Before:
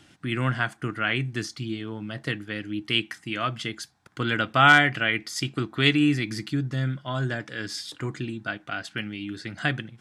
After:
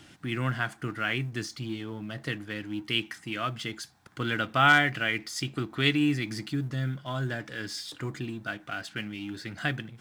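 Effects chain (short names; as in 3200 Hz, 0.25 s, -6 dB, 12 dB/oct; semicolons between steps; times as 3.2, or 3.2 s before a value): G.711 law mismatch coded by mu; gain -4.5 dB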